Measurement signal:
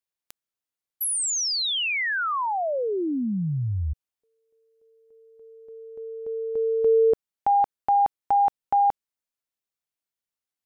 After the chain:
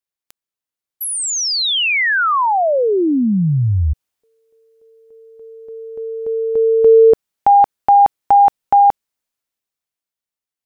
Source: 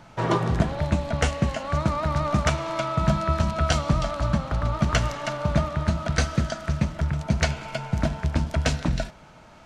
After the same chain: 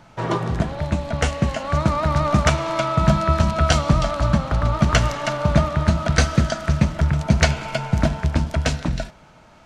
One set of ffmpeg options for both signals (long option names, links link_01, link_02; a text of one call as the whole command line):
ffmpeg -i in.wav -af "dynaudnorm=framelen=140:gausssize=21:maxgain=11dB" out.wav